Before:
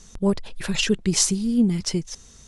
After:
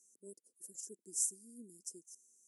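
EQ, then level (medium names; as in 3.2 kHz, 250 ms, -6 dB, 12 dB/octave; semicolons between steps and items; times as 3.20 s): ladder high-pass 570 Hz, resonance 25%; inverse Chebyshev band-stop 730–3900 Hz, stop band 50 dB; -1.0 dB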